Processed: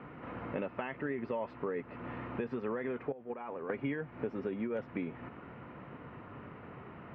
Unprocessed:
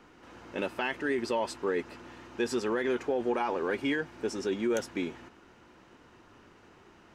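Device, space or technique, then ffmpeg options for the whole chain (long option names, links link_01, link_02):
bass amplifier: -filter_complex "[0:a]asettb=1/sr,asplit=3[link_01][link_02][link_03];[link_01]atrim=end=3.124[link_04];[link_02]atrim=start=3.12:end=3.7,asetpts=PTS-STARTPTS,afade=type=in:duration=0.004:curve=qsin,afade=type=out:start_time=0.576:duration=0.004:curve=qsin,agate=range=-16dB:threshold=-25dB:ratio=16:detection=peak[link_05];[link_03]atrim=start=3.696[link_06];[link_04][link_05]acrossfade=duration=0.004:curve1=hsin:curve2=qsin[link_07];[link_07][link_06]acrossfade=duration=0.004:curve1=qsin:curve2=hsin,acompressor=threshold=-44dB:ratio=4,highpass=72,equalizer=frequency=140:width_type=q:width=4:gain=8,equalizer=frequency=350:width_type=q:width=4:gain=-8,equalizer=frequency=860:width_type=q:width=4:gain=-5,equalizer=frequency=1600:width_type=q:width=4:gain=-7,lowpass=frequency=2100:width=0.5412,lowpass=frequency=2100:width=1.3066,volume=10.5dB"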